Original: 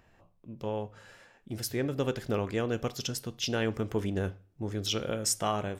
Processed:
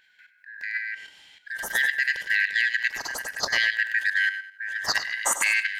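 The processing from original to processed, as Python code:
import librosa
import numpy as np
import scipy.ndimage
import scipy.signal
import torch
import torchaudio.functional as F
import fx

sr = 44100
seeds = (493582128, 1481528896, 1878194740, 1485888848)

y = fx.band_shuffle(x, sr, order='4123')
y = fx.echo_feedback(y, sr, ms=100, feedback_pct=26, wet_db=-5.0)
y = fx.level_steps(y, sr, step_db=10)
y = F.gain(torch.from_numpy(y), 8.0).numpy()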